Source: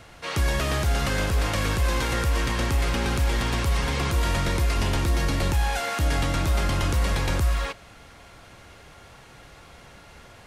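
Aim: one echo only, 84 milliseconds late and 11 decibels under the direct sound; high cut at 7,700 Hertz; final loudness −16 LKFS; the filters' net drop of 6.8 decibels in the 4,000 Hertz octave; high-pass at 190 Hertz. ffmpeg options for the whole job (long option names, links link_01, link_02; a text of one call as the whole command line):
ffmpeg -i in.wav -af "highpass=190,lowpass=7700,equalizer=frequency=4000:width_type=o:gain=-9,aecho=1:1:84:0.282,volume=13.5dB" out.wav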